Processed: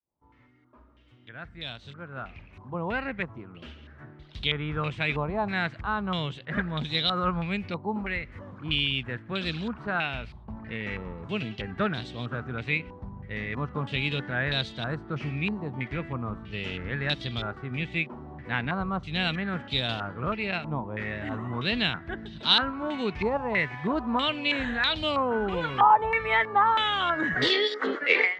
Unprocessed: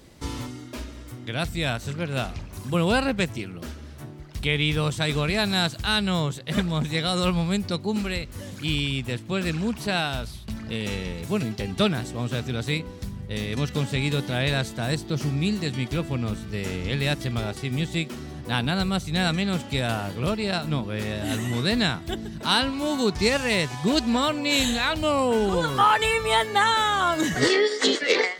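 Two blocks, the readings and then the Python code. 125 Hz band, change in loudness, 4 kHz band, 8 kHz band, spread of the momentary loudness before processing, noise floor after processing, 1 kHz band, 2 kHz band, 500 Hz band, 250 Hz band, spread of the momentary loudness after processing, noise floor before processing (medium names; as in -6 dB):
-7.0 dB, -3.5 dB, -2.5 dB, under -20 dB, 12 LU, -53 dBFS, -1.0 dB, -1.0 dB, -5.5 dB, -6.5 dB, 16 LU, -40 dBFS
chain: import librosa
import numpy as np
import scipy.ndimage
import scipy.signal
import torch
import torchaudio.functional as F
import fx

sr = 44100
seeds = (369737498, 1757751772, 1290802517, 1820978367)

y = fx.fade_in_head(x, sr, length_s=4.94)
y = fx.filter_held_lowpass(y, sr, hz=3.1, low_hz=930.0, high_hz=3600.0)
y = F.gain(torch.from_numpy(y), -6.5).numpy()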